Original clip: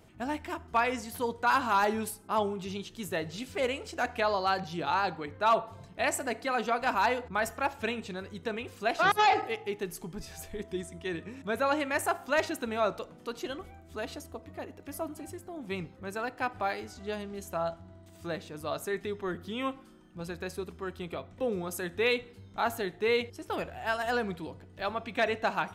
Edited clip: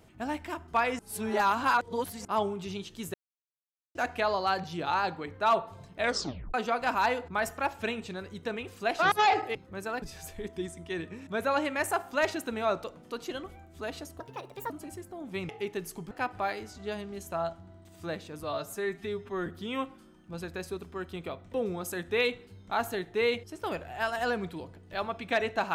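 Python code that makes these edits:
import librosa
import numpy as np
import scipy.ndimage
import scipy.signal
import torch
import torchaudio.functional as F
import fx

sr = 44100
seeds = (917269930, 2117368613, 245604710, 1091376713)

y = fx.edit(x, sr, fx.reverse_span(start_s=0.99, length_s=1.26),
    fx.silence(start_s=3.14, length_s=0.81),
    fx.tape_stop(start_s=5.99, length_s=0.55),
    fx.swap(start_s=9.55, length_s=0.62, other_s=15.85, other_length_s=0.47),
    fx.speed_span(start_s=14.35, length_s=0.71, speed=1.42),
    fx.stretch_span(start_s=18.64, length_s=0.69, factor=1.5), tone=tone)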